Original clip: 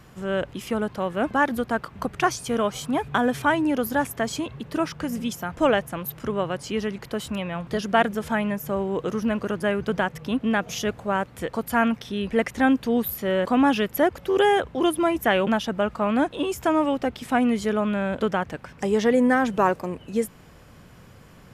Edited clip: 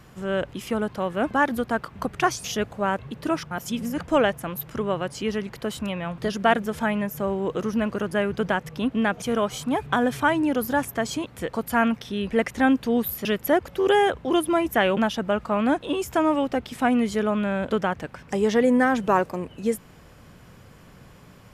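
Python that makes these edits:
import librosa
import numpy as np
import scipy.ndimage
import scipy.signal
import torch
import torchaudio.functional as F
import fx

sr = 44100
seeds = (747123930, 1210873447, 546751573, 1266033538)

y = fx.edit(x, sr, fx.swap(start_s=2.44, length_s=2.04, other_s=10.71, other_length_s=0.55),
    fx.reverse_span(start_s=5.0, length_s=0.5),
    fx.cut(start_s=13.25, length_s=0.5), tone=tone)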